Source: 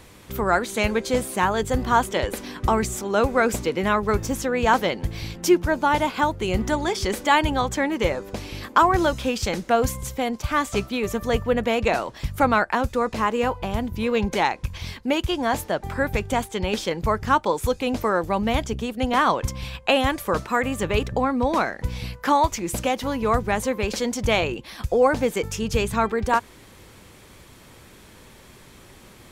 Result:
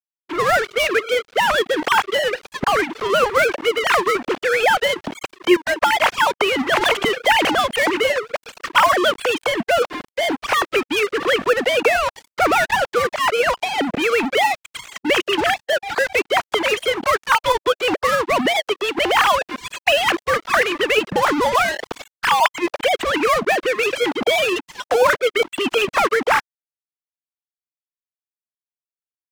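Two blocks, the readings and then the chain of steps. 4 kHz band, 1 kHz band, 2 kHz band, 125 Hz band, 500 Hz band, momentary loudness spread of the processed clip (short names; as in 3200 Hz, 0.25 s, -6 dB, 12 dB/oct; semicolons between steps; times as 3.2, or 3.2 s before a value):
+9.5 dB, +4.0 dB, +8.5 dB, -10.5 dB, +4.5 dB, 5 LU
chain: sine-wave speech; in parallel at +3 dB: compressor 5:1, threshold -32 dBFS, peak gain reduction 26 dB; on the sum: low-pass opened by the level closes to 2100 Hz, open at -18 dBFS; crossover distortion -37 dBFS; spectral compressor 2:1; gain -4 dB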